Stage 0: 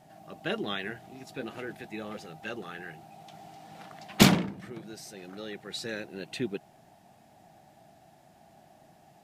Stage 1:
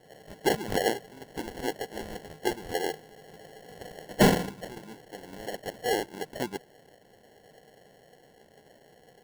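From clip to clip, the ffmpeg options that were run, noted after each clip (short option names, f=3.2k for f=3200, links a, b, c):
-af "lowpass=f=1.7k:t=q:w=12,acrusher=samples=36:mix=1:aa=0.000001,volume=-3dB"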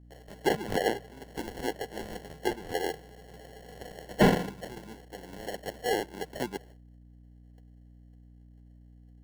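-filter_complex "[0:a]agate=range=-21dB:threshold=-51dB:ratio=16:detection=peak,acrossover=split=160|3500[a][b][c];[c]alimiter=limit=-23dB:level=0:latency=1:release=441[d];[a][b][d]amix=inputs=3:normalize=0,aeval=exprs='val(0)+0.00282*(sin(2*PI*60*n/s)+sin(2*PI*2*60*n/s)/2+sin(2*PI*3*60*n/s)/3+sin(2*PI*4*60*n/s)/4+sin(2*PI*5*60*n/s)/5)':c=same,volume=-1dB"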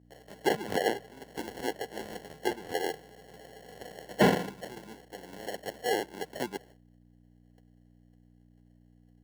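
-af "highpass=f=180:p=1"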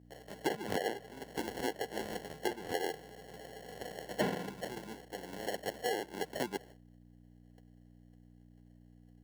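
-af "acompressor=threshold=-31dB:ratio=6,volume=1dB"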